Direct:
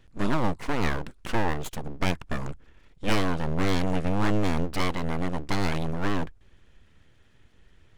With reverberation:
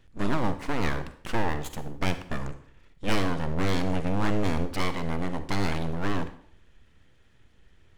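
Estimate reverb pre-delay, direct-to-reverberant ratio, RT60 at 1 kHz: 38 ms, 10.5 dB, 0.55 s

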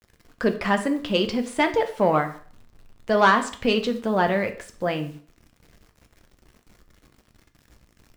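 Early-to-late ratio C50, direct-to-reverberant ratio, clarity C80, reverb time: 13.0 dB, 6.0 dB, 16.5 dB, 0.45 s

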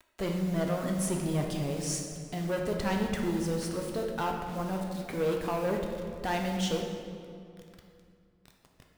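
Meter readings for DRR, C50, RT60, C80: 0.5 dB, 3.0 dB, 2.3 s, 4.5 dB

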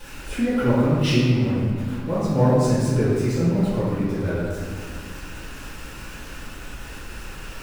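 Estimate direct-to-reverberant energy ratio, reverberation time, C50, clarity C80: −16.0 dB, 1.9 s, −2.5 dB, 0.0 dB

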